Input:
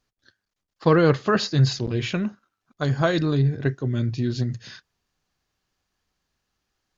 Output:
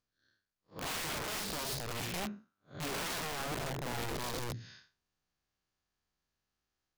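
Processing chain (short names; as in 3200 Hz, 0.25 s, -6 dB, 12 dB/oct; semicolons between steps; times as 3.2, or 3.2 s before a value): time blur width 0.156 s; wrapped overs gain 24.5 dB; gain -8.5 dB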